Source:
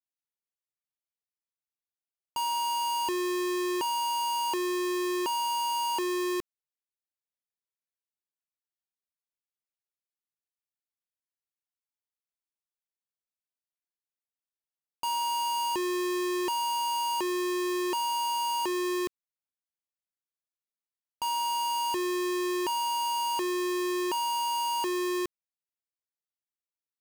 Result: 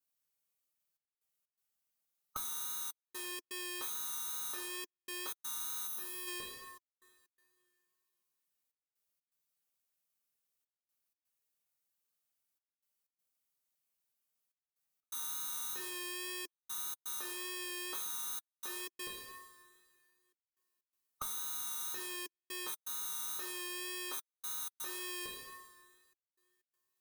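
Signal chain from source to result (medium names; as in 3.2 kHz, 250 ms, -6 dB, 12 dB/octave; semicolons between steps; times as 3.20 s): single-diode clipper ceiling -34.5 dBFS; formant shift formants +5 st; treble shelf 8.2 kHz +10.5 dB; two-slope reverb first 0.69 s, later 2.4 s, from -26 dB, DRR -2 dB; time-frequency box 5.87–6.27 s, 240–9800 Hz -7 dB; compression 4:1, threshold -40 dBFS, peak gain reduction 17 dB; trance gate "xxxxxxxx..xx.xxx" 124 bpm -60 dB; comb of notches 340 Hz; wow and flutter 17 cents; trim +1 dB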